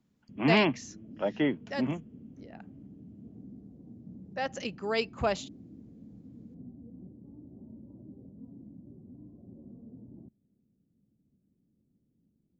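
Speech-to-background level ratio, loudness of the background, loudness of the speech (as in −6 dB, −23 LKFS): 20.0 dB, −50.0 LKFS, −30.0 LKFS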